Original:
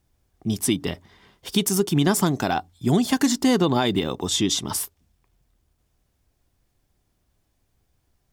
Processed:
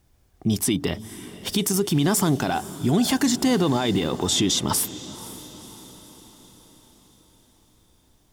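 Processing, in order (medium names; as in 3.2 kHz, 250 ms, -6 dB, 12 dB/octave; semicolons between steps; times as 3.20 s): peak limiter -18.5 dBFS, peak gain reduction 10.5 dB; echo that smears into a reverb 512 ms, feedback 55%, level -16 dB; trim +6 dB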